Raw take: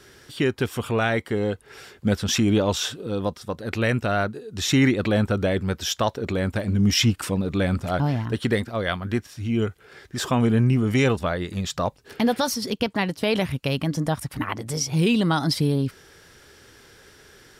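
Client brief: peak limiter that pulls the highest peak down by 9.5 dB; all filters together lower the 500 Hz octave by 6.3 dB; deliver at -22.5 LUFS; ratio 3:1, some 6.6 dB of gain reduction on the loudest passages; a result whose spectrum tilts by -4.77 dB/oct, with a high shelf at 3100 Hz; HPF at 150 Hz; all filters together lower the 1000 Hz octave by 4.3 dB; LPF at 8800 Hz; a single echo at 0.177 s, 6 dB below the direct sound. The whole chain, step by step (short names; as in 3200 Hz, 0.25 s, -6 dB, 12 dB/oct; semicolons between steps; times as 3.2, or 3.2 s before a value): HPF 150 Hz; LPF 8800 Hz; bell 500 Hz -7 dB; bell 1000 Hz -3 dB; high shelf 3100 Hz -3 dB; compressor 3:1, threshold -27 dBFS; limiter -22 dBFS; echo 0.177 s -6 dB; gain +10 dB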